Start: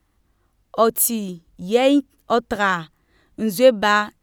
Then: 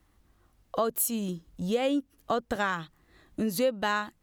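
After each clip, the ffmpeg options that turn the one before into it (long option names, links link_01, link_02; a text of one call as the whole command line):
ffmpeg -i in.wav -af "acompressor=threshold=-28dB:ratio=3" out.wav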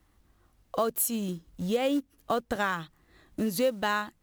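ffmpeg -i in.wav -af "acrusher=bits=6:mode=log:mix=0:aa=0.000001" out.wav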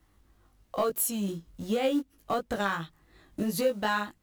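ffmpeg -i in.wav -af "asoftclip=type=tanh:threshold=-18dB,flanger=delay=18:depth=2.2:speed=2.8,volume=3.5dB" out.wav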